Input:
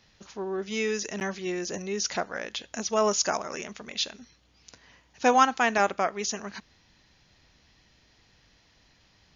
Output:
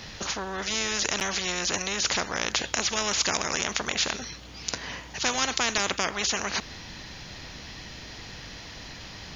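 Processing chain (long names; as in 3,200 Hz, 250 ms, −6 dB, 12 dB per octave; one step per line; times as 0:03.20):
every bin compressed towards the loudest bin 4 to 1
level +2.5 dB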